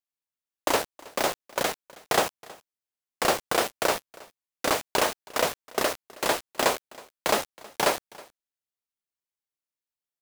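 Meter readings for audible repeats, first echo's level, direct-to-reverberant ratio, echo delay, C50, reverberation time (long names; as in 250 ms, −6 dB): 1, −22.5 dB, no reverb audible, 320 ms, no reverb audible, no reverb audible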